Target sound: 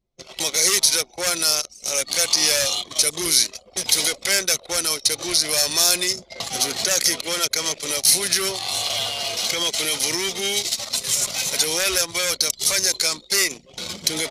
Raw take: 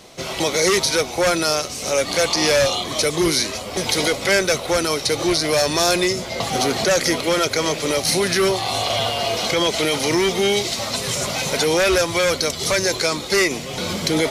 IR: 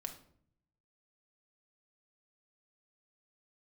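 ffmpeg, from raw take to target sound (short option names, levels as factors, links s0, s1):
-af "anlmdn=631,crystalizer=i=7.5:c=0,volume=0.251"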